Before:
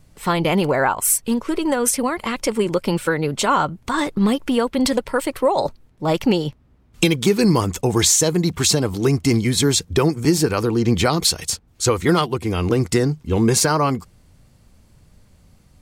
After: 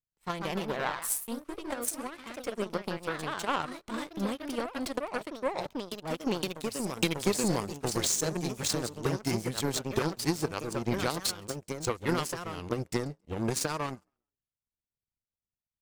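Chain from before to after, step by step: frequency-shifting echo 0.136 s, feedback 50%, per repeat +49 Hz, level -22 dB; power-law curve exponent 2; echoes that change speed 0.169 s, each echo +2 st, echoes 2, each echo -6 dB; gain -6 dB

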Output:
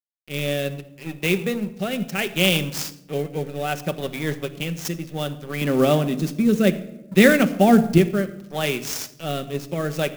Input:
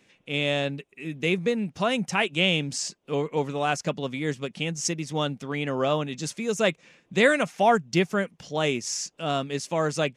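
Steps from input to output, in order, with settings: notch 1000 Hz, Q 5.1; de-hum 111.8 Hz, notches 4; 5.61–7.98 bell 240 Hz +10.5 dB 1.1 oct; crossover distortion -40.5 dBFS; rotary speaker horn 0.65 Hz; reverb RT60 0.95 s, pre-delay 5 ms, DRR 8.5 dB; clock jitter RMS 0.023 ms; gain +4.5 dB

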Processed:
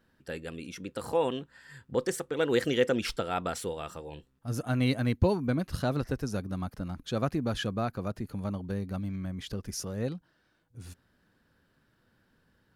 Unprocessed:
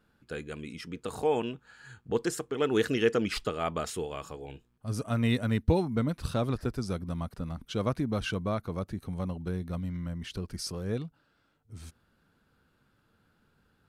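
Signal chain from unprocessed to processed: speed mistake 44.1 kHz file played as 48 kHz

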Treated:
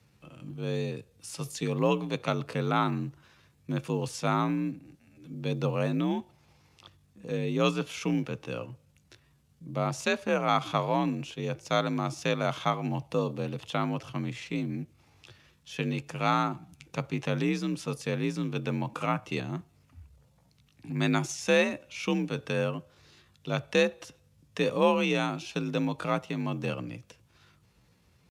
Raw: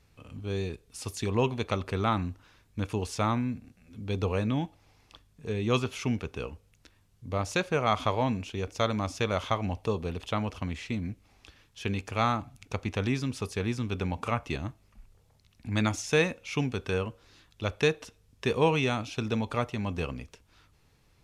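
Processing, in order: tempo 0.75×; frequency shift +46 Hz; short-mantissa float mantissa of 6-bit

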